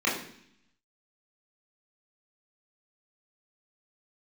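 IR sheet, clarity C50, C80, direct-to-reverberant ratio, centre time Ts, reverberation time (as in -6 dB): 6.0 dB, 9.5 dB, -7.0 dB, 38 ms, 0.65 s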